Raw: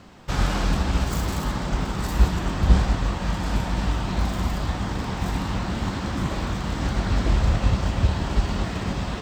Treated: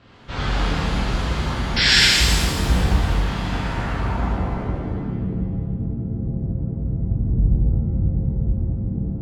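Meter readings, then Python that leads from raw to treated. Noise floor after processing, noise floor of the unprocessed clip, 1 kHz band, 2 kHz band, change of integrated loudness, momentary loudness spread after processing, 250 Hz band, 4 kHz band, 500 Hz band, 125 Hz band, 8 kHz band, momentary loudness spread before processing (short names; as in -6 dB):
-28 dBFS, -30 dBFS, 0.0 dB, +8.5 dB, +4.0 dB, 11 LU, +1.5 dB, +12.5 dB, +0.5 dB, +2.5 dB, +8.0 dB, 6 LU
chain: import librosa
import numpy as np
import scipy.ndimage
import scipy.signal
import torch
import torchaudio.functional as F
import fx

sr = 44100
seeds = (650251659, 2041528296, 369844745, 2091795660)

y = fx.filter_sweep_lowpass(x, sr, from_hz=3600.0, to_hz=160.0, start_s=3.4, end_s=5.41, q=1.4)
y = fx.spec_paint(y, sr, seeds[0], shape='noise', start_s=1.76, length_s=0.31, low_hz=1400.0, high_hz=5700.0, level_db=-15.0)
y = fx.rev_shimmer(y, sr, seeds[1], rt60_s=1.5, semitones=7, shimmer_db=-8, drr_db=-8.0)
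y = y * librosa.db_to_amplitude(-7.5)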